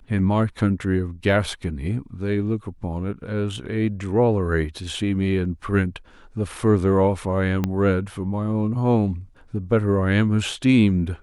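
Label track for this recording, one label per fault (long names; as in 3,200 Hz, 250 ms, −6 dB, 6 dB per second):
7.640000	7.640000	click −10 dBFS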